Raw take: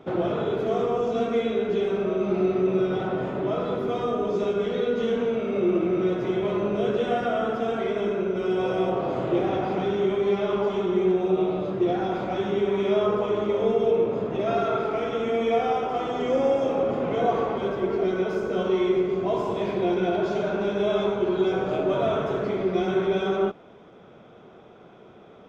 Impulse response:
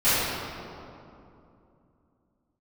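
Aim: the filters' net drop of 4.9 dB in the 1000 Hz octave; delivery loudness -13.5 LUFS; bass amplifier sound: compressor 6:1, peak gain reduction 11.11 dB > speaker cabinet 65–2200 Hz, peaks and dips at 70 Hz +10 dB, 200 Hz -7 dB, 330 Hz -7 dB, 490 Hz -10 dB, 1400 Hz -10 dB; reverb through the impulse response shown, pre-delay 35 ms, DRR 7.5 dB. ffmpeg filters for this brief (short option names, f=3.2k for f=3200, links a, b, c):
-filter_complex "[0:a]equalizer=f=1k:t=o:g=-4.5,asplit=2[a][b];[1:a]atrim=start_sample=2205,adelay=35[c];[b][c]afir=irnorm=-1:irlink=0,volume=-26.5dB[d];[a][d]amix=inputs=2:normalize=0,acompressor=threshold=-28dB:ratio=6,highpass=f=65:w=0.5412,highpass=f=65:w=1.3066,equalizer=f=70:t=q:w=4:g=10,equalizer=f=200:t=q:w=4:g=-7,equalizer=f=330:t=q:w=4:g=-7,equalizer=f=490:t=q:w=4:g=-10,equalizer=f=1.4k:t=q:w=4:g=-10,lowpass=f=2.2k:w=0.5412,lowpass=f=2.2k:w=1.3066,volume=23.5dB"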